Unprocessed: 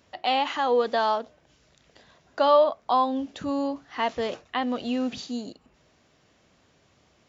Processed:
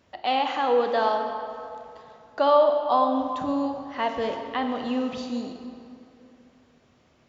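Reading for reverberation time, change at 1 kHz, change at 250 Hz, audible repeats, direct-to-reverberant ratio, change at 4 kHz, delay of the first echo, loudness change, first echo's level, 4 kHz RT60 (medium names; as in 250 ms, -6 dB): 2.7 s, +1.0 dB, +1.0 dB, no echo, 5.0 dB, -2.0 dB, no echo, +1.0 dB, no echo, 1.8 s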